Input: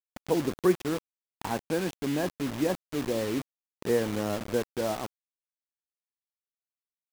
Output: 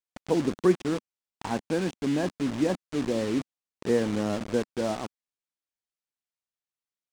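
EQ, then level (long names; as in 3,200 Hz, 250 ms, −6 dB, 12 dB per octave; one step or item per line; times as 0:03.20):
dynamic equaliser 230 Hz, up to +5 dB, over −40 dBFS, Q 1.5
Savitzky-Golay smoothing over 9 samples
0.0 dB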